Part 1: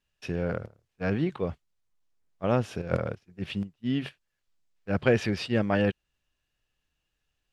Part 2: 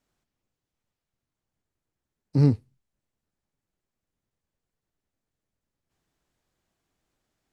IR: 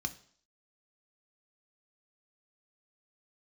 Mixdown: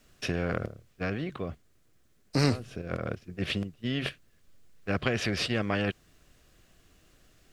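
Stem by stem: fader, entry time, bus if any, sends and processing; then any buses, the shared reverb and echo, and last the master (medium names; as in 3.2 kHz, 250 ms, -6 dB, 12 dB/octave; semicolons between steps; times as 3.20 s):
-9.0 dB, 0.00 s, no send, compression 2.5:1, threshold -29 dBFS, peak gain reduction 8.5 dB; bass shelf 440 Hz +8 dB; auto duck -17 dB, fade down 1.70 s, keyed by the second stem
-3.0 dB, 0.00 s, no send, none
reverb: none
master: peaking EQ 880 Hz -13.5 dB 0.23 oct; spectrum-flattening compressor 2:1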